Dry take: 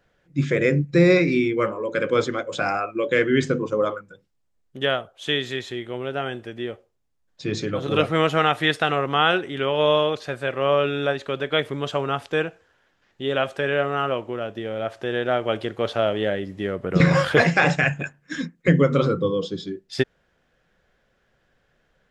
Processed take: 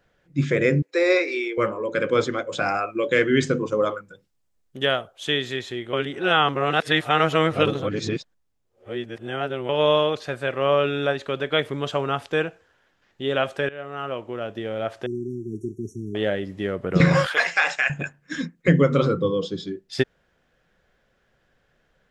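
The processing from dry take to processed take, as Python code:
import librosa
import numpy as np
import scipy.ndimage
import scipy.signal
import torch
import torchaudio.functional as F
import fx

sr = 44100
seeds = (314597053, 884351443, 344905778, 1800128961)

y = fx.steep_highpass(x, sr, hz=390.0, slope=36, at=(0.82, 1.58))
y = fx.high_shelf(y, sr, hz=4300.0, db=5.0, at=(2.75, 5.27))
y = fx.brickwall_bandstop(y, sr, low_hz=420.0, high_hz=5500.0, at=(15.06, 16.15))
y = fx.highpass(y, sr, hz=1000.0, slope=12, at=(17.26, 17.9))
y = fx.edit(y, sr, fx.reverse_span(start_s=5.93, length_s=3.76),
    fx.fade_in_from(start_s=13.69, length_s=0.86, floor_db=-19.5), tone=tone)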